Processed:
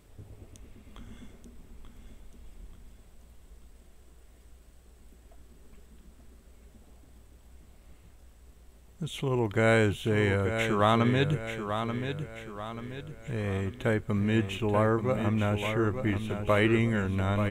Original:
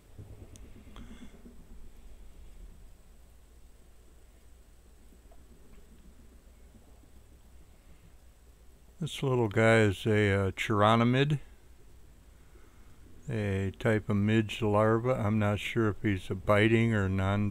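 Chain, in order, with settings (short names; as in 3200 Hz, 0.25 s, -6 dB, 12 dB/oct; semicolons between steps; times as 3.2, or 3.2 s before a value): feedback echo 0.885 s, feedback 44%, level -8 dB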